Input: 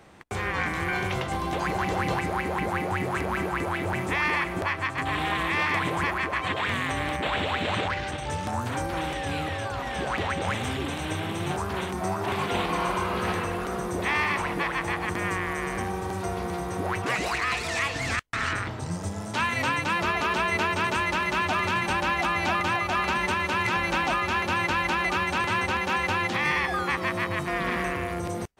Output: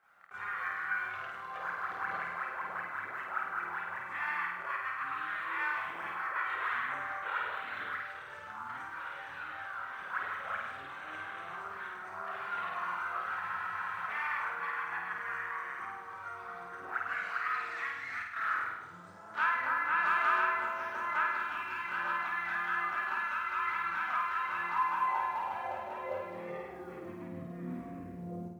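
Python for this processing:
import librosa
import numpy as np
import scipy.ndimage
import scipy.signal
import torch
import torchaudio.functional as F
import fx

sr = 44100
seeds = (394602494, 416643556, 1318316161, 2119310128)

y = fx.filter_sweep_bandpass(x, sr, from_hz=1400.0, to_hz=260.0, start_s=24.43, end_s=27.45, q=4.2)
y = fx.quant_companded(y, sr, bits=8)
y = fx.chorus_voices(y, sr, voices=4, hz=0.56, base_ms=29, depth_ms=1.1, mix_pct=65)
y = fx.room_flutter(y, sr, wall_m=8.8, rt60_s=0.83)
y = fx.spec_freeze(y, sr, seeds[0], at_s=13.42, hold_s=0.66)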